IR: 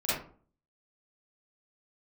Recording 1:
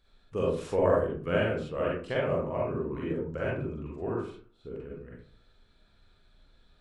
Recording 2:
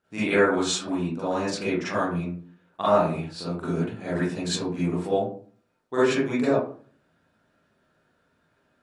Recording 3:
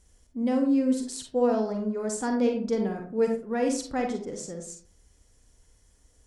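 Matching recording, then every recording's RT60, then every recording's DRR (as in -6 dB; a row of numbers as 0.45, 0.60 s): 2; 0.45, 0.45, 0.45 s; -5.5, -12.0, 3.0 dB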